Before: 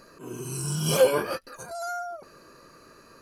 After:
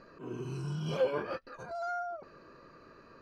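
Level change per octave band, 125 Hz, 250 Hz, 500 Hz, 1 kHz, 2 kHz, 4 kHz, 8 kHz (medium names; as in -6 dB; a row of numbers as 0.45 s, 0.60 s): -6.5 dB, -6.5 dB, -9.0 dB, -5.5 dB, -8.0 dB, -14.5 dB, under -25 dB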